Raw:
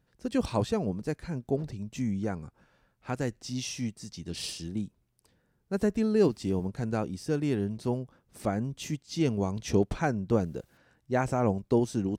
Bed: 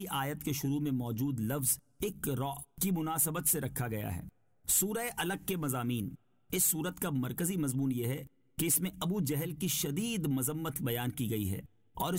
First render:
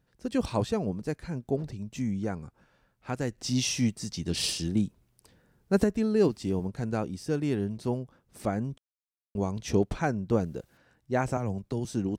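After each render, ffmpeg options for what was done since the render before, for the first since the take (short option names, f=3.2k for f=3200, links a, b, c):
-filter_complex "[0:a]asettb=1/sr,asplit=3[a][b][c];[a]atrim=end=3.384[d];[b]atrim=start=3.38:end=5.84,asetpts=PTS-STARTPTS,afade=t=in:d=0.004:c=qsin,afade=t=out:st=2.456:d=0.004:c=qsin,acontrast=77[e];[c]atrim=start=5.836[f];[d][e]acrossfade=d=0.004:c1=hsin:c2=qsin[g];[g][f]acrossfade=d=0.004:c1=qsin:c2=hsin,asettb=1/sr,asplit=3[h][i][j];[h]atrim=end=11.374[k];[i]atrim=start=11.37:end=11.85,asetpts=PTS-STARTPTS,afade=t=in:d=0.004:c=qsin,afade=t=out:st=0.476:d=0.004:c=qsin,acrossover=split=160|3000[l][m][n];[m]acompressor=threshold=-31dB:ratio=6:attack=3.2:release=140:knee=2.83:detection=peak[o];[l][o][n]amix=inputs=3:normalize=0[p];[j]atrim=start=11.846[q];[k][p]acrossfade=d=0.004:c1=hsin:c2=qsin[r];[r][q]acrossfade=d=0.004:c1=qsin:c2=hsin,asplit=3[s][t][u];[s]atrim=end=8.78,asetpts=PTS-STARTPTS,afade=t=out:st=8.776:d=0.004:c=hsin[v];[t]atrim=start=8.78:end=9.35,asetpts=PTS-STARTPTS,volume=0[w];[u]atrim=start=9.35,asetpts=PTS-STARTPTS,afade=t=in:d=0.004:c=hsin[x];[v][w][x]concat=n=3:v=0:a=1"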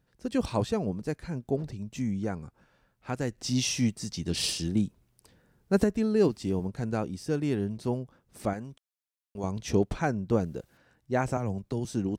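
-filter_complex "[0:a]asettb=1/sr,asplit=3[a][b][c];[a]atrim=end=8.534[d];[b]atrim=start=8.53:end=9.44,asetpts=PTS-STARTPTS,afade=t=in:d=0.004:c=qsin,afade=t=out:st=0.906:d=0.004:c=qsin,lowshelf=f=490:g=-10[e];[c]atrim=start=9.436[f];[d][e]acrossfade=d=0.004:c1=hsin:c2=qsin[g];[g][f]acrossfade=d=0.004:c1=qsin:c2=hsin"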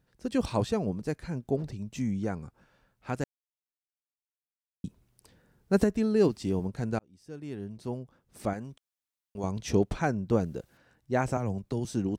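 -filter_complex "[0:a]asplit=4[a][b][c][d];[a]atrim=end=3.24,asetpts=PTS-STARTPTS,afade=t=out:st=3.236:d=0.004:c=hsin[e];[b]atrim=start=3.24:end=4.84,asetpts=PTS-STARTPTS,volume=0[f];[c]atrim=start=4.84:end=6.99,asetpts=PTS-STARTPTS,afade=t=in:d=0.004:c=hsin,afade=t=out:st=2.146:d=0.004:c=hsin[g];[d]atrim=start=6.99,asetpts=PTS-STARTPTS,afade=t=in:d=1.69[h];[e][f][g][h]concat=n=4:v=0:a=1"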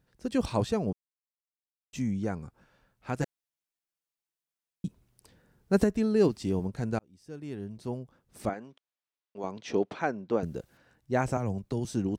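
-filter_complex "[0:a]asettb=1/sr,asplit=3[a][b][c];[a]atrim=end=3.194[d];[b]atrim=start=3.19:end=4.87,asetpts=PTS-STARTPTS,afade=t=in:d=0.004:c=qsin,afade=t=out:st=1.676:d=0.004:c=qsin,aecho=1:1:6:0.8,atrim=end_sample=74088[e];[c]atrim=start=4.866[f];[d][e]acrossfade=d=0.004:c1=hsin:c2=qsin[g];[g][f]acrossfade=d=0.004:c1=qsin:c2=hsin,asettb=1/sr,asplit=3[h][i][j];[h]atrim=end=8.494[k];[i]atrim=start=8.49:end=10.43,asetpts=PTS-STARTPTS,afade=t=in:d=0.004:c=qsin,afade=t=out:st=1.936:d=0.004:c=qsin,highpass=290,lowpass=4.1k[l];[j]atrim=start=10.426[m];[k][l]acrossfade=d=0.004:c1=hsin:c2=qsin[n];[n][m]acrossfade=d=0.004:c1=qsin:c2=hsin,asplit=3[o][p][q];[o]atrim=end=0.93,asetpts=PTS-STARTPTS,afade=t=out:st=0.926:d=0.004:c=hsin[r];[p]atrim=start=0.93:end=1.93,asetpts=PTS-STARTPTS,volume=0[s];[q]atrim=start=1.93,asetpts=PTS-STARTPTS,afade=t=in:d=0.004:c=hsin[t];[r][s][t]concat=n=3:v=0:a=1"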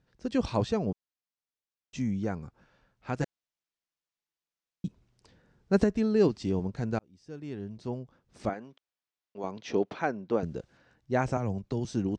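-af "lowpass=f=6.7k:w=0.5412,lowpass=f=6.7k:w=1.3066"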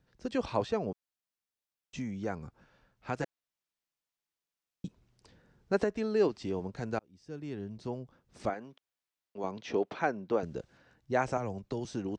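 -filter_complex "[0:a]acrossover=split=350|3300[a][b][c];[a]acompressor=threshold=-38dB:ratio=6[d];[c]alimiter=level_in=17dB:limit=-24dB:level=0:latency=1:release=399,volume=-17dB[e];[d][b][e]amix=inputs=3:normalize=0"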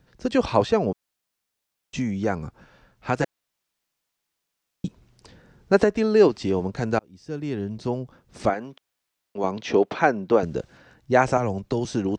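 -af "volume=11dB"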